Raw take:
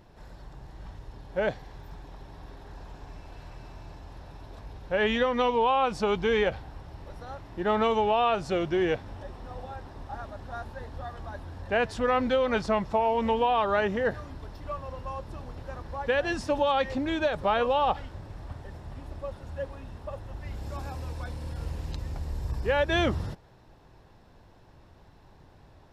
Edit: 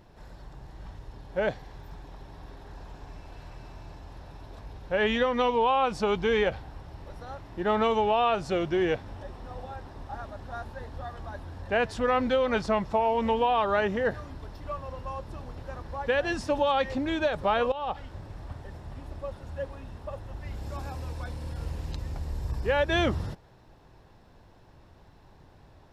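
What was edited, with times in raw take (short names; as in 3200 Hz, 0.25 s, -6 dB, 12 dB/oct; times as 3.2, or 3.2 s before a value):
17.72–18.16 fade in linear, from -15 dB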